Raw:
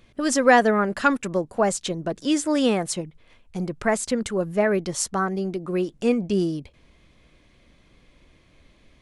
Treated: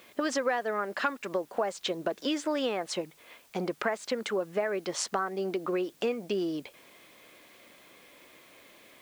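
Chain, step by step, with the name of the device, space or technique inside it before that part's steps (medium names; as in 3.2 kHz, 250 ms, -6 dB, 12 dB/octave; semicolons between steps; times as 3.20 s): baby monitor (band-pass 410–4100 Hz; compression 6:1, threshold -34 dBFS, peak gain reduction 21 dB; white noise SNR 29 dB); trim +6.5 dB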